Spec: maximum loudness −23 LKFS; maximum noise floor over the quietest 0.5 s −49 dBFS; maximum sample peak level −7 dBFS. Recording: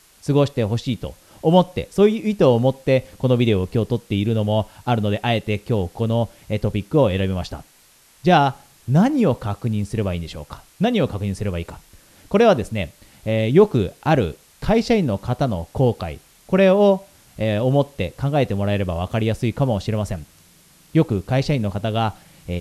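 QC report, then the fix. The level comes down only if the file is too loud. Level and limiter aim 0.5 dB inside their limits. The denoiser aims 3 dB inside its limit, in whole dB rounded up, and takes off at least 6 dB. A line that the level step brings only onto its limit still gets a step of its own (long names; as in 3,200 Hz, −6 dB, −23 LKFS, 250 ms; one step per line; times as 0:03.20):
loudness −20.5 LKFS: out of spec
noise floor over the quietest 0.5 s −53 dBFS: in spec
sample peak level −2.5 dBFS: out of spec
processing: level −3 dB
brickwall limiter −7.5 dBFS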